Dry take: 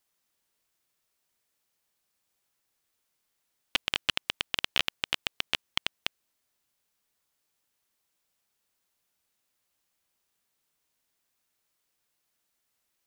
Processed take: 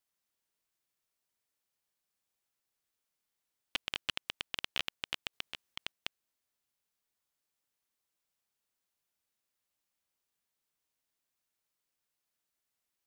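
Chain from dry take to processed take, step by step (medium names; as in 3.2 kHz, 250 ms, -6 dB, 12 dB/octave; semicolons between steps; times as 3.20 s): 5.33–5.92 s: compressor with a negative ratio -32 dBFS, ratio -1; trim -8 dB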